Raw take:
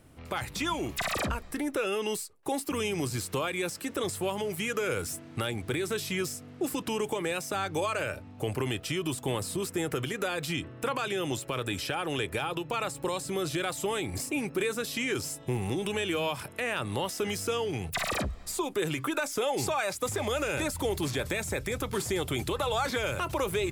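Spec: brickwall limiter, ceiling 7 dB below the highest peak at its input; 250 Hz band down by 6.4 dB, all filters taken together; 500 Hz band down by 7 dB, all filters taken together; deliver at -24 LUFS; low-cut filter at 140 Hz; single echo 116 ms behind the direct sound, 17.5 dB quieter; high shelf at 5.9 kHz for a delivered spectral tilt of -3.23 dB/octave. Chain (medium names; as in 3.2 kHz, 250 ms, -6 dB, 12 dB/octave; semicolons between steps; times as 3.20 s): high-pass 140 Hz; peaking EQ 250 Hz -5.5 dB; peaking EQ 500 Hz -7 dB; treble shelf 5.9 kHz -6.5 dB; peak limiter -27 dBFS; delay 116 ms -17.5 dB; trim +13.5 dB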